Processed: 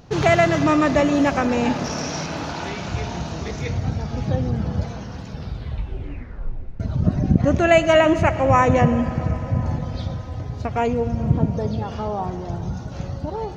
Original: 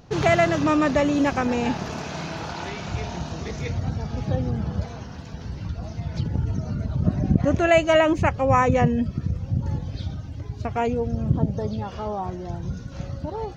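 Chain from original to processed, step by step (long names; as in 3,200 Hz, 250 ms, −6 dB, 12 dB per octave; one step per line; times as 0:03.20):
0:01.84–0:02.26: parametric band 5,600 Hz +15 dB 0.23 octaves
0:05.26: tape stop 1.54 s
convolution reverb RT60 5.8 s, pre-delay 48 ms, DRR 11.5 dB
level +2.5 dB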